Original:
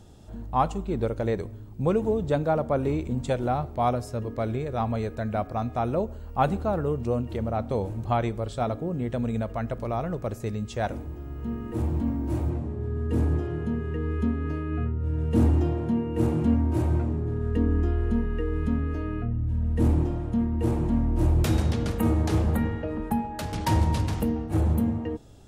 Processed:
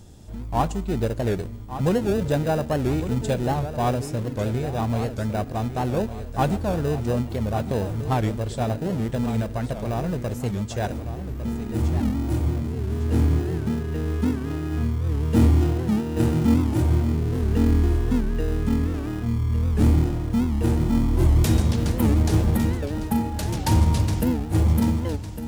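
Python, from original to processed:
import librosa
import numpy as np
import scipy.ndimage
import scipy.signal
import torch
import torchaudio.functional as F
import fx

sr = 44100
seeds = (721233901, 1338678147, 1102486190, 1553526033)

p1 = fx.bass_treble(x, sr, bass_db=2, treble_db=7)
p2 = fx.notch(p1, sr, hz=1300.0, q=7.8)
p3 = fx.sample_hold(p2, sr, seeds[0], rate_hz=1100.0, jitter_pct=0)
p4 = p2 + (p3 * 10.0 ** (-9.0 / 20.0))
p5 = fx.echo_feedback(p4, sr, ms=1155, feedback_pct=37, wet_db=-11.0)
y = fx.record_warp(p5, sr, rpm=78.0, depth_cents=160.0)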